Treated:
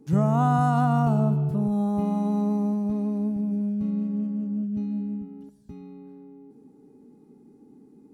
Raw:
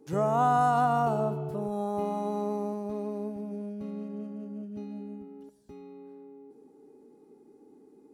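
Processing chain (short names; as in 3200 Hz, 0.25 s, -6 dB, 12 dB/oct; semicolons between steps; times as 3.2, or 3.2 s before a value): resonant low shelf 280 Hz +10 dB, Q 1.5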